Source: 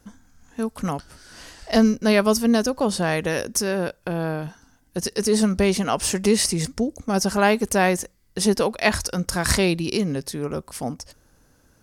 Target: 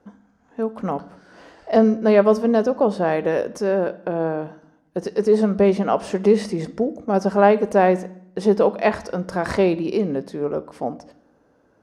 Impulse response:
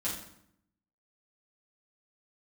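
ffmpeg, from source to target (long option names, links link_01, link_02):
-filter_complex "[0:a]bandpass=frequency=530:width_type=q:width=0.97:csg=0,asplit=2[link_01][link_02];[1:a]atrim=start_sample=2205,lowpass=3900,highshelf=frequency=2900:gain=10.5[link_03];[link_02][link_03]afir=irnorm=-1:irlink=0,volume=-17dB[link_04];[link_01][link_04]amix=inputs=2:normalize=0,volume=5dB"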